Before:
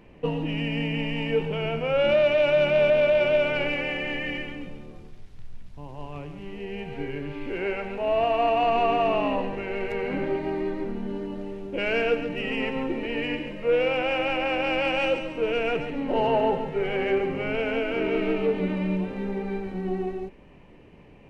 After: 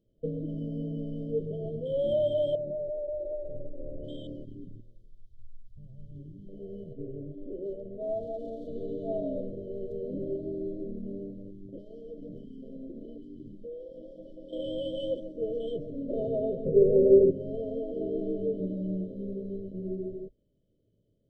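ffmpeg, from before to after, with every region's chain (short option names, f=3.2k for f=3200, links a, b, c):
-filter_complex "[0:a]asettb=1/sr,asplit=3[a][b][c];[a]atrim=end=2.554[d];[b]atrim=start=2.55:end=4.04,asetpts=PTS-STARTPTS,afade=t=in:d=0.004:c=qsin,afade=t=out:st=1.486:d=0.004:c=qsin,lowpass=f=1.1k:w=0.5412,lowpass=f=1.1k:w=1.3066,asubboost=boost=11.5:cutoff=74,acompressor=threshold=-25dB:ratio=6:attack=3.2:release=140:knee=1:detection=peak[e];[c]atrim=start=4.036[f];[d][e]acrossfade=d=0.004:c1=hsin:c2=qsin[g];[g][f]acrossfade=d=0.004:c1=qsin:c2=hsin,asettb=1/sr,asplit=3[h][i][j];[h]atrim=end=6.934[k];[i]atrim=start=6.93:end=8.68,asetpts=PTS-STARTPTS,afade=t=in:d=0.004:c=qsin,afade=t=out:st=1.746:d=0.004:c=qsin,lowpass=f=1.5k:p=1,bandreject=f=60:t=h:w=6,bandreject=f=120:t=h:w=6,bandreject=f=180:t=h:w=6,bandreject=f=240:t=h:w=6,bandreject=f=300:t=h:w=6,bandreject=f=360:t=h:w=6,bandreject=f=420:t=h:w=6,bandreject=f=480:t=h:w=6,aeval=exprs='clip(val(0),-1,0.0708)':c=same[l];[j]atrim=start=8.676[m];[k][l]acrossfade=d=0.004:c1=hsin:c2=qsin[n];[n][m]acrossfade=d=0.004:c1=qsin:c2=hsin,asettb=1/sr,asplit=3[o][p][q];[o]atrim=end=11.304[r];[p]atrim=start=11.3:end=14.53,asetpts=PTS-STARTPTS,afade=t=in:d=0.004:c=qsin,afade=t=out:st=3.226:d=0.004:c=qsin,equalizer=f=740:t=o:w=1.5:g=-9,acompressor=threshold=-30dB:ratio=12:attack=3.2:release=140:knee=1:detection=peak[s];[q]atrim=start=14.526[t];[r][s]acrossfade=d=0.004:c1=hsin:c2=qsin[u];[u][t]acrossfade=d=0.004:c1=qsin:c2=hsin,asettb=1/sr,asplit=3[v][w][x];[v]atrim=end=16.654[y];[w]atrim=start=16.65:end=17.31,asetpts=PTS-STARTPTS,afade=t=in:d=0.004:c=qsin,afade=t=out:st=0.656:d=0.004:c=qsin,lowpass=f=1.3k:w=0.5412,lowpass=f=1.3k:w=1.3066,lowshelf=f=650:t=q:w=3:g=8.5[z];[x]atrim=start=17.306[aa];[y][z]acrossfade=d=0.004:c1=hsin:c2=qsin[ab];[ab][aa]acrossfade=d=0.004:c1=qsin:c2=hsin,afwtdn=0.0398,equalizer=f=110:w=7.3:g=12,afftfilt=real='re*(1-between(b*sr/4096,670,3000))':imag='im*(1-between(b*sr/4096,670,3000))':win_size=4096:overlap=0.75,volume=-6dB"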